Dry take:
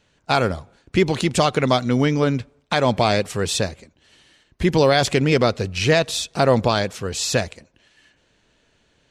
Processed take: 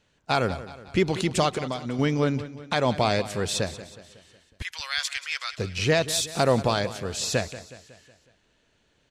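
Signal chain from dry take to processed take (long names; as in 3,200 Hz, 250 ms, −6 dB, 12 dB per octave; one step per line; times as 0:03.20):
0:01.54–0:01.99: downward compressor, threshold −22 dBFS, peak gain reduction 9.5 dB
0:04.62–0:05.58: high-pass filter 1,400 Hz 24 dB per octave
0:06.08–0:06.52: high-shelf EQ 6,200 Hz +10.5 dB
repeating echo 184 ms, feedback 52%, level −15 dB
level −5 dB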